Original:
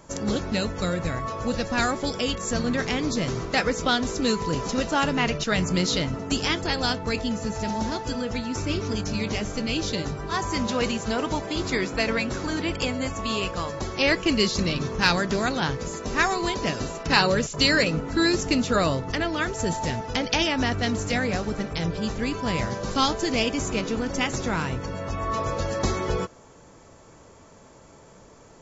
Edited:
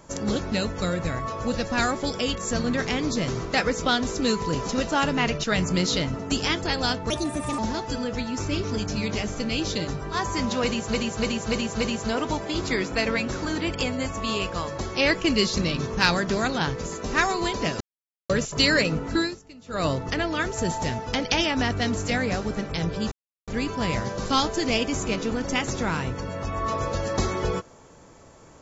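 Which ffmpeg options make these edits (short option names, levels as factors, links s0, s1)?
-filter_complex "[0:a]asplit=12[s0][s1][s2][s3][s4][s5][s6][s7][s8][s9][s10][s11];[s0]atrim=end=7.104[s12];[s1]atrim=start=7.1:end=7.76,asetpts=PTS-STARTPTS,asetrate=59976,aresample=44100,atrim=end_sample=21401,asetpts=PTS-STARTPTS[s13];[s2]atrim=start=7.756:end=11.112[s14];[s3]atrim=start=10.818:end=11.112[s15];[s4]atrim=start=10.818:end=11.112[s16];[s5]atrim=start=10.818:end=11.112[s17];[s6]atrim=start=10.818:end=16.82,asetpts=PTS-STARTPTS,afade=t=out:st=5.998:d=0.004:c=hsin[s18];[s7]atrim=start=16.82:end=17.31,asetpts=PTS-STARTPTS,volume=0[s19];[s8]atrim=start=17.31:end=18.45,asetpts=PTS-STARTPTS,afade=t=in:d=0.004:c=hsin,afade=t=out:st=0.87:d=0.27:c=qua:silence=0.0630957[s20];[s9]atrim=start=18.45:end=18.61,asetpts=PTS-STARTPTS,volume=0.0631[s21];[s10]atrim=start=18.61:end=22.13,asetpts=PTS-STARTPTS,afade=t=in:d=0.27:c=qua:silence=0.0630957,afade=t=out:st=3.516:d=0.004:c=hsin,apad=pad_dur=0.36[s22];[s11]atrim=start=22.13,asetpts=PTS-STARTPTS,afade=t=in:d=0.004:c=hsin[s23];[s12][s13]acrossfade=d=0.004:c1=hsin:c2=hsin[s24];[s24][s14]acrossfade=d=0.004:c1=hsin:c2=hsin[s25];[s25][s15]acrossfade=d=0.004:c1=hsin:c2=hsin[s26];[s26][s16]acrossfade=d=0.004:c1=hsin:c2=hsin[s27];[s27][s17]acrossfade=d=0.004:c1=hsin:c2=hsin[s28];[s18][s19][s20][s21][s22][s23]concat=n=6:v=0:a=1[s29];[s28][s29]acrossfade=d=0.004:c1=hsin:c2=hsin"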